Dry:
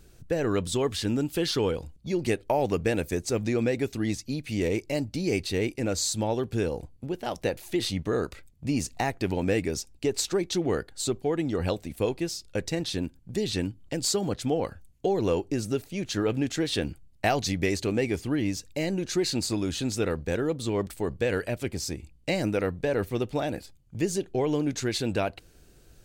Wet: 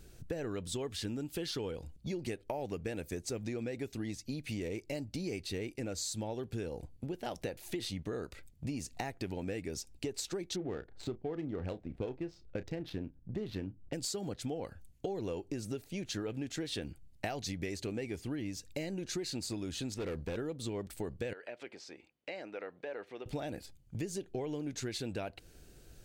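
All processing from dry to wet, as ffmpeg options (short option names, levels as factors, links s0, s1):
-filter_complex "[0:a]asettb=1/sr,asplit=3[s0][s1][s2];[s0]atrim=end=10.564[s3];[s1]atrim=start=10.56:end=13.93,asetpts=PTS-STARTPTS,afade=t=in:d=0.004:c=qsin,afade=t=out:st=3.366:d=0.004:c=qsin,adynamicsmooth=sensitivity=2.5:basefreq=1100,asplit=2[s4][s5];[s5]adelay=32,volume=0.211[s6];[s4][s6]amix=inputs=2:normalize=0,atrim=end_sample=148617[s7];[s2]atrim=start=13.926[s8];[s3][s7]acrossfade=d=0.004:c1=hsin:c2=qsin[s9];[s9][s8]acrossfade=d=0.004:c1=qsin:c2=hsin,asettb=1/sr,asplit=3[s10][s11][s12];[s10]atrim=end=19.944[s13];[s11]atrim=start=19.94:end=20.36,asetpts=PTS-STARTPTS,afade=t=in:d=0.004:c=qsin,afade=t=out:st=0.416:d=0.004:c=qsin,acrossover=split=4100[s14][s15];[s15]acompressor=threshold=0.00224:ratio=4:attack=1:release=60[s16];[s14][s16]amix=inputs=2:normalize=0,asoftclip=type=hard:threshold=0.0447[s17];[s12]atrim=start=20.356[s18];[s13][s17]acrossfade=d=0.004:c1=hsin:c2=qsin[s19];[s19][s18]acrossfade=d=0.004:c1=qsin:c2=hsin,asettb=1/sr,asplit=3[s20][s21][s22];[s20]atrim=end=21.334[s23];[s21]atrim=start=21.33:end=23.26,asetpts=PTS-STARTPTS,afade=t=in:d=0.004:c=qsin,afade=t=out:st=1.926:d=0.004:c=qsin,acompressor=threshold=0.0158:ratio=2.5:attack=3.2:release=140:knee=1:detection=peak,highpass=510,lowpass=2900[s24];[s22]atrim=start=23.256[s25];[s23][s24]acrossfade=d=0.004:c1=hsin:c2=qsin[s26];[s26][s25]acrossfade=d=0.004:c1=qsin:c2=hsin,equalizer=f=1100:t=o:w=0.44:g=-3.5,acompressor=threshold=0.0178:ratio=5,volume=0.891"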